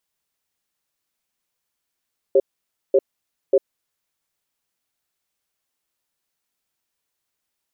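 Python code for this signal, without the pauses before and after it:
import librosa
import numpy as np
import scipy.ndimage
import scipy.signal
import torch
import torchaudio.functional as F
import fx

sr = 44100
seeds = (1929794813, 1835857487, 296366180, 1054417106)

y = fx.cadence(sr, length_s=1.65, low_hz=394.0, high_hz=544.0, on_s=0.05, off_s=0.54, level_db=-13.5)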